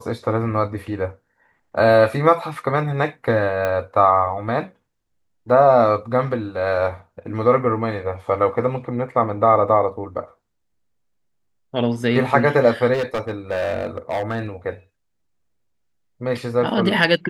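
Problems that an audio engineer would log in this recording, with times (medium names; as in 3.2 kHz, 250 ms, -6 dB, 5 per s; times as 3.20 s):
3.65 s: pop -11 dBFS
12.93–14.46 s: clipped -18.5 dBFS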